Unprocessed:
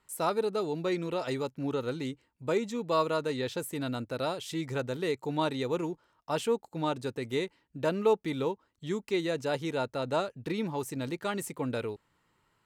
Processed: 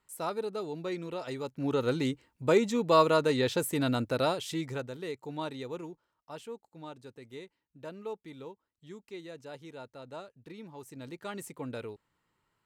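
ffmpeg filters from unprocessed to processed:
-af "volume=4.47,afade=t=in:st=1.39:d=0.54:silence=0.316228,afade=t=out:st=4.12:d=0.79:silence=0.251189,afade=t=out:st=5.53:d=0.92:silence=0.446684,afade=t=in:st=10.71:d=0.7:silence=0.398107"

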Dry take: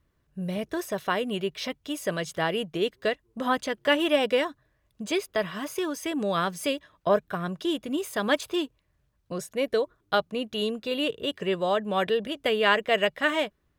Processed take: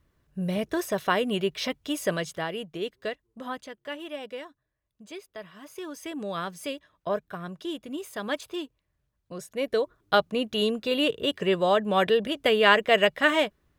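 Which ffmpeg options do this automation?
-af "volume=9.44,afade=t=out:st=2.06:d=0.4:silence=0.398107,afade=t=out:st=3.02:d=0.82:silence=0.375837,afade=t=in:st=5.58:d=0.43:silence=0.398107,afade=t=in:st=9.33:d=0.87:silence=0.354813"

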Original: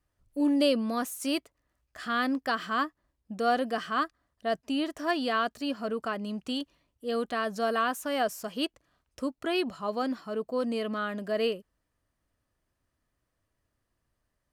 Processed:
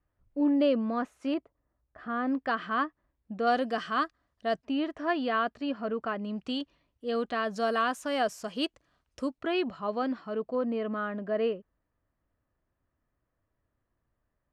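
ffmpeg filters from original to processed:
-af "asetnsamples=n=441:p=0,asendcmd='1.34 lowpass f 1100;2.27 lowpass f 2600;3.47 lowpass f 6000;4.65 lowpass f 2600;6.36 lowpass f 4400;7.51 lowpass f 7400;9.38 lowpass f 3200;10.55 lowpass f 1800',lowpass=2000"

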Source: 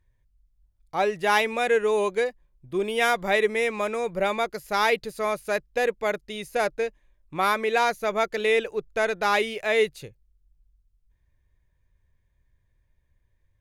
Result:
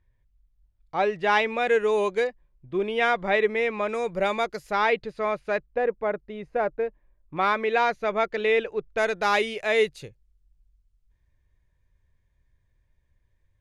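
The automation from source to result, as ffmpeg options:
-af "asetnsamples=n=441:p=0,asendcmd='1.67 lowpass f 6600;2.27 lowpass f 3200;3.89 lowpass f 7400;4.71 lowpass f 2900;5.63 lowpass f 1400;7.37 lowpass f 3400;8.98 lowpass f 8700',lowpass=3800"

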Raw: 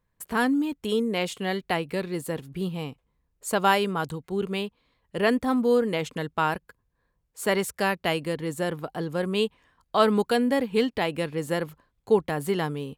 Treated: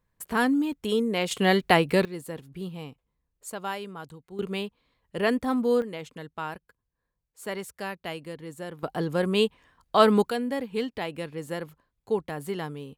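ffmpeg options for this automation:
-af "asetnsamples=n=441:p=0,asendcmd='1.31 volume volume 7dB;2.05 volume volume -6dB;3.5 volume volume -12dB;4.39 volume volume -2dB;5.82 volume volume -9.5dB;8.83 volume volume 2dB;10.3 volume volume -6dB',volume=1"

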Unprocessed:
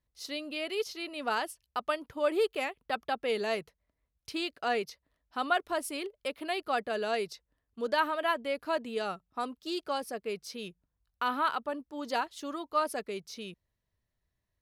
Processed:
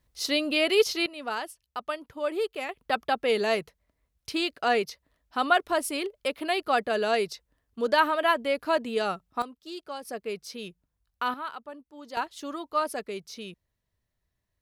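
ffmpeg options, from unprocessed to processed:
-af "asetnsamples=n=441:p=0,asendcmd='1.06 volume volume -1dB;2.69 volume volume 6dB;9.42 volume volume -4.5dB;10.05 volume volume 2dB;11.34 volume volume -7dB;12.17 volume volume 2dB',volume=3.76"

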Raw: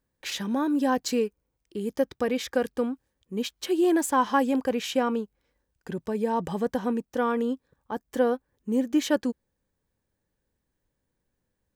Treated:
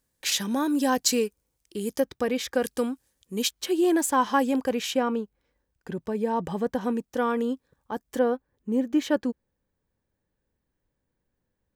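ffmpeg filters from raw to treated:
-af "asetnsamples=n=441:p=0,asendcmd='2 equalizer g 3;2.63 equalizer g 14.5;3.51 equalizer g 3.5;4.94 equalizer g -3;6.81 equalizer g 3;8.19 equalizer g -6.5',equalizer=f=10000:t=o:w=2.5:g=12"

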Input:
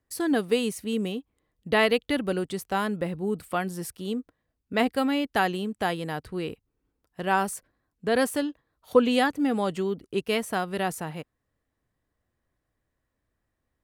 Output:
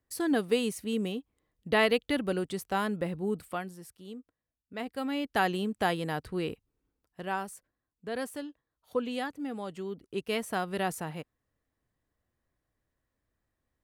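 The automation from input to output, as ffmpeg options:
-af "volume=7.94,afade=t=out:st=3.32:d=0.45:silence=0.298538,afade=t=in:st=4.86:d=0.75:silence=0.237137,afade=t=out:st=6.51:d=0.95:silence=0.298538,afade=t=in:st=9.7:d=1:silence=0.375837"

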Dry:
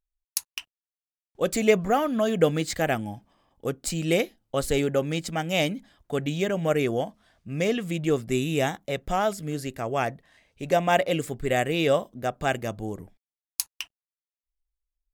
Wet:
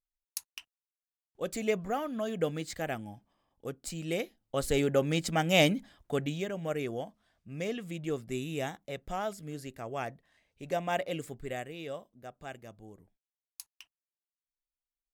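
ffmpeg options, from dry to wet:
-af "volume=1.19,afade=t=in:st=4.16:d=1.56:silence=0.266073,afade=t=out:st=5.72:d=0.75:silence=0.266073,afade=t=out:st=11.32:d=0.42:silence=0.398107"

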